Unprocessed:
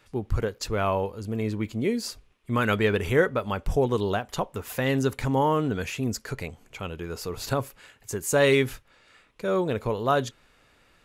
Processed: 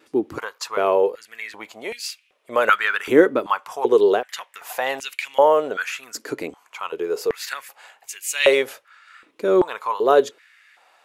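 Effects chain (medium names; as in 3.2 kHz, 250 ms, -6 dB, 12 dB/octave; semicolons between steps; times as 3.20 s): vibrato 1 Hz 15 cents; step-sequenced high-pass 2.6 Hz 310–2500 Hz; trim +2.5 dB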